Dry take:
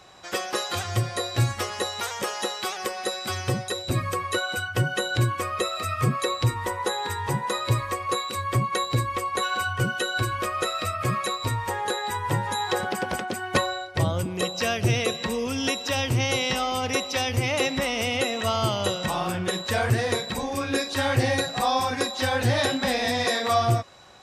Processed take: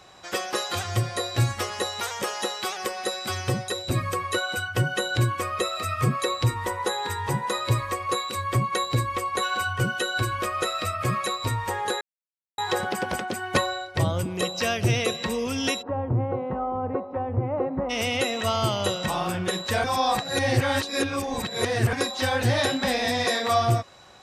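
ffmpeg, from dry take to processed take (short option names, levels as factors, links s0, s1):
-filter_complex "[0:a]asplit=3[s0][s1][s2];[s0]afade=t=out:st=15.81:d=0.02[s3];[s1]lowpass=f=1100:w=0.5412,lowpass=f=1100:w=1.3066,afade=t=in:st=15.81:d=0.02,afade=t=out:st=17.89:d=0.02[s4];[s2]afade=t=in:st=17.89:d=0.02[s5];[s3][s4][s5]amix=inputs=3:normalize=0,asplit=5[s6][s7][s8][s9][s10];[s6]atrim=end=12.01,asetpts=PTS-STARTPTS,afade=t=out:st=12.006:d=0.004:c=hsin[s11];[s7]atrim=start=12.01:end=12.58,asetpts=PTS-STARTPTS,volume=0[s12];[s8]atrim=start=12.58:end=19.842,asetpts=PTS-STARTPTS,afade=t=in:d=0.004:c=hsin[s13];[s9]atrim=start=19.838:end=21.932,asetpts=PTS-STARTPTS,areverse[s14];[s10]atrim=start=21.928[s15];[s11][s12][s13]concat=n=3:v=0:a=1[s16];[s16][s14]acrossfade=d=0.004:c1=hsin:c2=hsin[s17];[s17][s15]acrossfade=d=0.004:c1=hsin:c2=hsin"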